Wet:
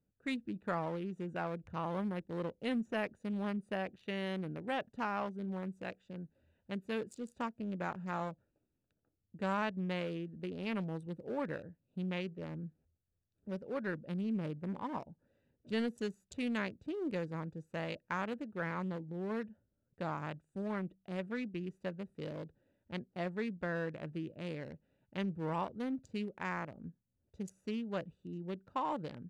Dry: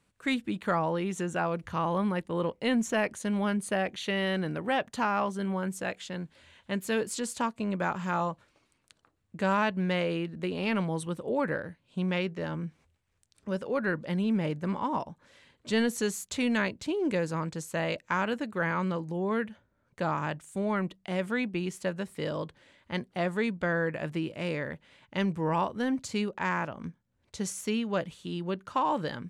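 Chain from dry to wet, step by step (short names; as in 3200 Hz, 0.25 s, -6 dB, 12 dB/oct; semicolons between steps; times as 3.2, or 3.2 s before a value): Wiener smoothing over 41 samples; gain -7.5 dB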